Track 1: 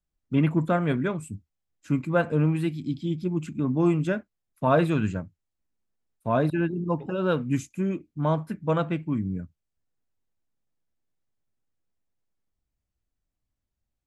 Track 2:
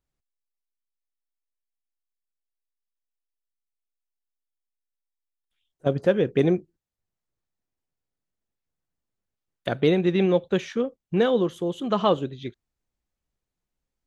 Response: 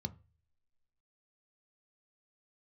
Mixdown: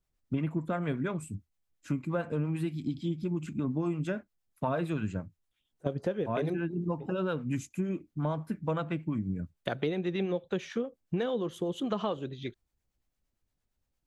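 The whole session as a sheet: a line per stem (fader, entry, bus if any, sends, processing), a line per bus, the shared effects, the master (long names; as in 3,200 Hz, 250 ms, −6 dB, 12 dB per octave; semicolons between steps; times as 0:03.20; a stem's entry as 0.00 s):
+2.0 dB, 0.00 s, no send, no processing
+0.5 dB, 0.00 s, no send, no processing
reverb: not used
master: two-band tremolo in antiphase 8.7 Hz, depth 50%, crossover 570 Hz; downward compressor, threshold −28 dBFS, peak gain reduction 12 dB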